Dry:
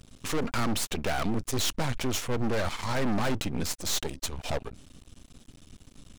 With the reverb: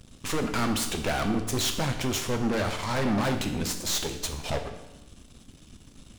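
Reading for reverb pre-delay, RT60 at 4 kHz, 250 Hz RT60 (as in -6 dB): 7 ms, 0.95 s, 1.0 s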